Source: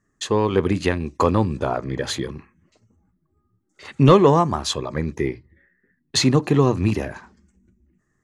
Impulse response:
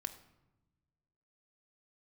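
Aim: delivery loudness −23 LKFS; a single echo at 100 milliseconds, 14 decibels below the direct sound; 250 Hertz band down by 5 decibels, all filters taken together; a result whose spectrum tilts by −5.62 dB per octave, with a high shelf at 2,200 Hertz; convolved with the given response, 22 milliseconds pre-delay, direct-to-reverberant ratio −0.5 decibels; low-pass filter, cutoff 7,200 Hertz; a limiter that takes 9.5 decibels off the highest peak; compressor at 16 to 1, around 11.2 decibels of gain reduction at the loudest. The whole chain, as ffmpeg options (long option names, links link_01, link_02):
-filter_complex "[0:a]lowpass=7200,equalizer=frequency=250:width_type=o:gain=-7,highshelf=frequency=2200:gain=-7,acompressor=threshold=-21dB:ratio=16,alimiter=limit=-21dB:level=0:latency=1,aecho=1:1:100:0.2,asplit=2[link_01][link_02];[1:a]atrim=start_sample=2205,adelay=22[link_03];[link_02][link_03]afir=irnorm=-1:irlink=0,volume=2.5dB[link_04];[link_01][link_04]amix=inputs=2:normalize=0,volume=6dB"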